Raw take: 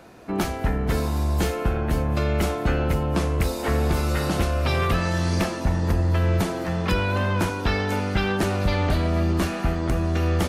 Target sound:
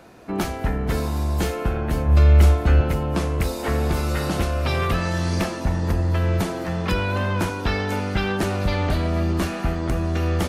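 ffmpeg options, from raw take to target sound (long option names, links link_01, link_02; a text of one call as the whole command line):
ffmpeg -i in.wav -filter_complex "[0:a]asettb=1/sr,asplit=3[link_01][link_02][link_03];[link_01]atrim=end=2.064[link_04];[link_02]atrim=start=2.06:end=2.81,asetpts=PTS-STARTPTS,afade=type=in:duration=0.004:curve=qsin,afade=type=out:start_time=0.746:duration=0.004:curve=qsin,equalizer=frequency=72:width_type=o:width=0.28:gain=13.5[link_05];[link_03]atrim=start=2.806[link_06];[link_04][link_05]acrossfade=duration=0.004:curve1=hsin:curve2=qsin[link_07];[link_07][link_06]acrossfade=duration=0.004:curve1=qsin:curve2=hsin" out.wav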